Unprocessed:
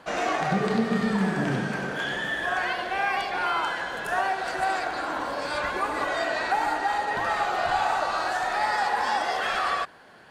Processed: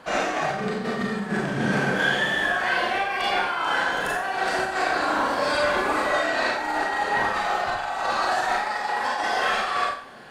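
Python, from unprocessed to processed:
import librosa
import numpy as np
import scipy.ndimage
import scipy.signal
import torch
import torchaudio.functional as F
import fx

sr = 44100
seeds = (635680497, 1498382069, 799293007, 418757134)

y = fx.over_compress(x, sr, threshold_db=-28.0, ratio=-0.5)
y = fx.rev_schroeder(y, sr, rt60_s=0.48, comb_ms=29, drr_db=-2.5)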